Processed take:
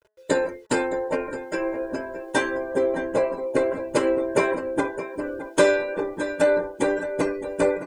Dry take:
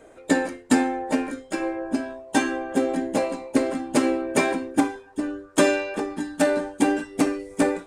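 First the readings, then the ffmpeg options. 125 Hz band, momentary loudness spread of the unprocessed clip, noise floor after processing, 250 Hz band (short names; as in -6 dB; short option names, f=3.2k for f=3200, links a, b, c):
-0.5 dB, 8 LU, -46 dBFS, -5.5 dB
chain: -af "agate=range=-6dB:threshold=-43dB:ratio=16:detection=peak,aecho=1:1:615|1230|1845|2460|3075|3690:0.251|0.146|0.0845|0.049|0.0284|0.0165,afftdn=nr=19:nf=-41,acrusher=bits=9:mix=0:aa=0.000001,highshelf=f=5.7k:g=-6.5,aecho=1:1:2:0.73,bandreject=f=213.1:t=h:w=4,bandreject=f=426.2:t=h:w=4,bandreject=f=639.3:t=h:w=4,bandreject=f=852.4:t=h:w=4,bandreject=f=1.0655k:t=h:w=4,bandreject=f=1.2786k:t=h:w=4,bandreject=f=1.4917k:t=h:w=4,bandreject=f=1.7048k:t=h:w=4,bandreject=f=1.9179k:t=h:w=4,adynamicequalizer=threshold=0.01:dfrequency=2200:dqfactor=0.7:tfrequency=2200:tqfactor=0.7:attack=5:release=100:ratio=0.375:range=4:mode=cutabove:tftype=highshelf"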